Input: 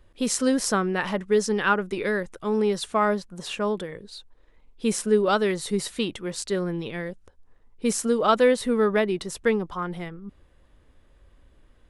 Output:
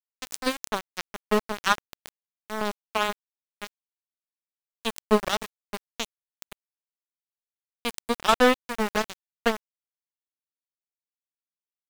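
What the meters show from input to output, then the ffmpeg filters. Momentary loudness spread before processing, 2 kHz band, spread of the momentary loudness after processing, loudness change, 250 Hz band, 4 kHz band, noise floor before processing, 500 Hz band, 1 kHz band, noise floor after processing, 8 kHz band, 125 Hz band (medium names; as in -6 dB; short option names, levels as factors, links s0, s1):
13 LU, -1.0 dB, 16 LU, -2.5 dB, -6.5 dB, +1.0 dB, -58 dBFS, -6.0 dB, -1.0 dB, under -85 dBFS, -7.0 dB, -10.0 dB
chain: -af "aeval=exprs='0.501*(cos(1*acos(clip(val(0)/0.501,-1,1)))-cos(1*PI/2))+0.00891*(cos(2*acos(clip(val(0)/0.501,-1,1)))-cos(2*PI/2))+0.0355*(cos(4*acos(clip(val(0)/0.501,-1,1)))-cos(4*PI/2))+0.1*(cos(7*acos(clip(val(0)/0.501,-1,1)))-cos(7*PI/2))':c=same,aeval=exprs='val(0)*gte(abs(val(0)),0.0562)':c=same"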